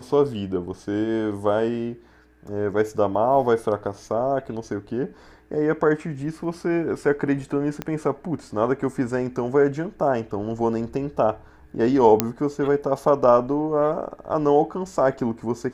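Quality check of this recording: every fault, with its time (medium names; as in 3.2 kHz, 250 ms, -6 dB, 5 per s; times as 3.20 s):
7.82 s: pop -14 dBFS
12.20 s: pop -1 dBFS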